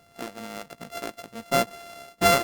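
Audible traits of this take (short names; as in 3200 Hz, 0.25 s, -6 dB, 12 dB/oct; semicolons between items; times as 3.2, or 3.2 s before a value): a buzz of ramps at a fixed pitch in blocks of 64 samples; Opus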